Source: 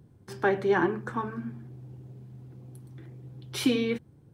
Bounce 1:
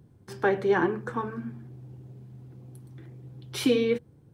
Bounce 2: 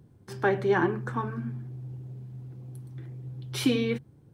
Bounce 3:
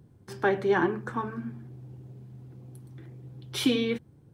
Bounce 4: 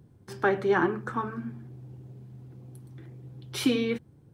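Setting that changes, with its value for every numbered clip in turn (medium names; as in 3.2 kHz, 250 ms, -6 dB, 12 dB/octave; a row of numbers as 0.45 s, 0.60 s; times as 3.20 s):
dynamic bell, frequency: 480 Hz, 130 Hz, 3.4 kHz, 1.3 kHz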